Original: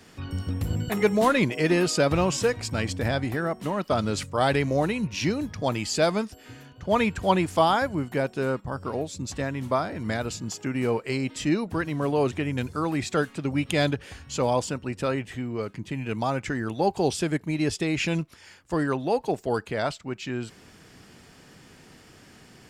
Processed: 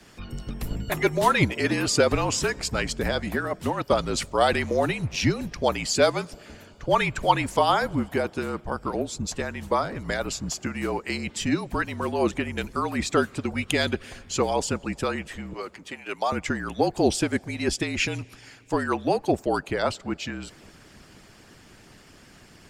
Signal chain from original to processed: 15.53–16.32 s: high-pass 490 Hz 12 dB/octave; on a send at -22 dB: reverberation RT60 3.8 s, pre-delay 38 ms; on the sum: harmonic-percussive split harmonic -11 dB; frequency shift -45 Hz; trim +4.5 dB

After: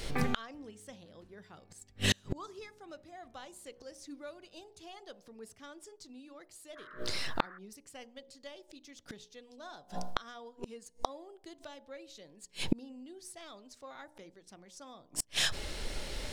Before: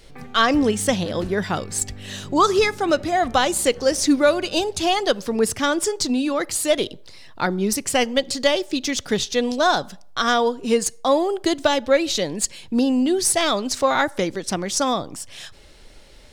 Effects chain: de-hum 60.54 Hz, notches 17; inverted gate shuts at -23 dBFS, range -38 dB; 6.75–7.57 s: band noise 1.1–1.8 kHz -61 dBFS; trim +8.5 dB

